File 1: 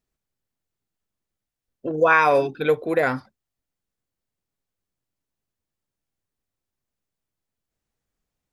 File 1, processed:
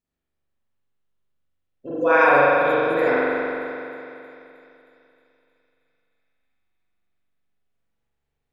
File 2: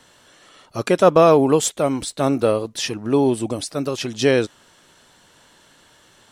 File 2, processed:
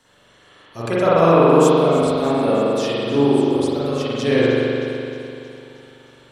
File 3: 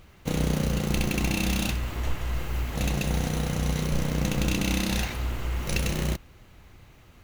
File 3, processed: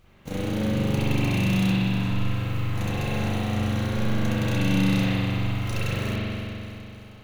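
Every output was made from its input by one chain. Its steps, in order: thin delay 0.313 s, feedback 68%, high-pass 4000 Hz, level -14 dB; spring tank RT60 2.9 s, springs 42 ms, chirp 20 ms, DRR -10 dB; gain -8 dB

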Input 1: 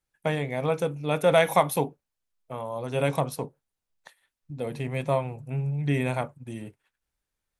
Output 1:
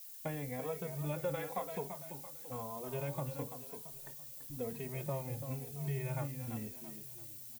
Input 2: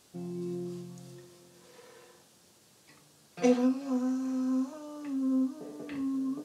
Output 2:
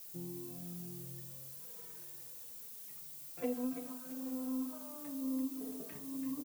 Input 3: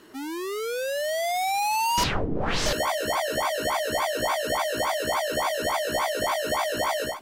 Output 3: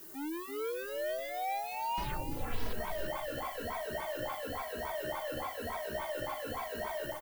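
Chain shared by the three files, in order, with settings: air absorption 240 m; compressor 4:1, threshold -31 dBFS; low shelf 60 Hz +10.5 dB; added noise violet -44 dBFS; on a send: feedback echo 0.337 s, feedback 41%, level -8.5 dB; on the sum: endless flanger 2.8 ms -1 Hz; gain -3.5 dB

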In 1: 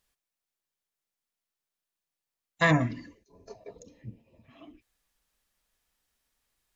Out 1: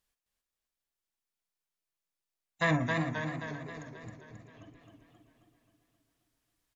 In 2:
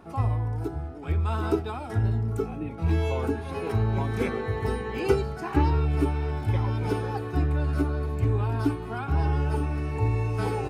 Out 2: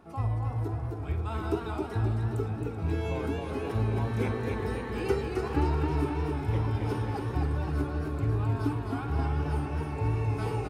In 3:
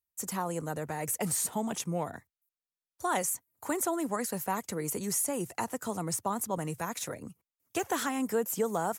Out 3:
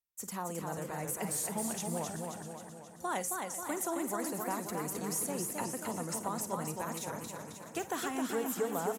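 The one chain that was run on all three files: tapped delay 45/54/384/651 ms -18/-16.5/-15/-19.5 dB; warbling echo 0.266 s, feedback 57%, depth 101 cents, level -4 dB; gain -5.5 dB

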